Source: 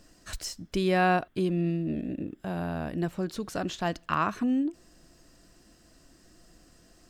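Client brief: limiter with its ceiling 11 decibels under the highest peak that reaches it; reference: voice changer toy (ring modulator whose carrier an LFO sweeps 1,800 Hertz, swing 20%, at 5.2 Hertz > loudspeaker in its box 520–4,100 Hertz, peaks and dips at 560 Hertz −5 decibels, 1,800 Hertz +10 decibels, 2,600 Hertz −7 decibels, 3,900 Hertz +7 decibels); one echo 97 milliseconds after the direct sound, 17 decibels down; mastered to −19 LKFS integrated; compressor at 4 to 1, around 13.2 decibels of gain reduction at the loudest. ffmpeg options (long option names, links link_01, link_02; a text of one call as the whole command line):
ffmpeg -i in.wav -af "acompressor=threshold=-35dB:ratio=4,alimiter=level_in=8dB:limit=-24dB:level=0:latency=1,volume=-8dB,aecho=1:1:97:0.141,aeval=exprs='val(0)*sin(2*PI*1800*n/s+1800*0.2/5.2*sin(2*PI*5.2*n/s))':channel_layout=same,highpass=520,equalizer=frequency=560:width_type=q:width=4:gain=-5,equalizer=frequency=1800:width_type=q:width=4:gain=10,equalizer=frequency=2600:width_type=q:width=4:gain=-7,equalizer=frequency=3900:width_type=q:width=4:gain=7,lowpass=frequency=4100:width=0.5412,lowpass=frequency=4100:width=1.3066,volume=18.5dB" out.wav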